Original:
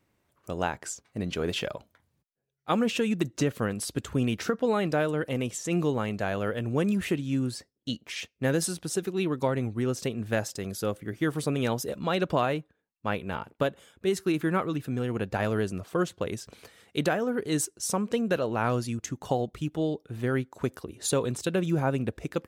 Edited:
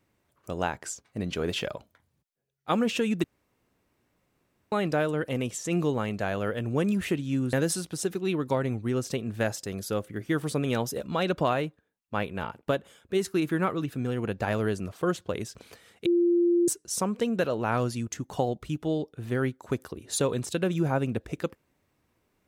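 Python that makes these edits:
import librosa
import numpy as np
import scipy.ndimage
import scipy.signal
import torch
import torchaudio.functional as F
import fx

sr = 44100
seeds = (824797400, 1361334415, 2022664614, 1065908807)

y = fx.edit(x, sr, fx.room_tone_fill(start_s=3.24, length_s=1.48),
    fx.cut(start_s=7.53, length_s=0.92),
    fx.bleep(start_s=16.98, length_s=0.62, hz=346.0, db=-19.0), tone=tone)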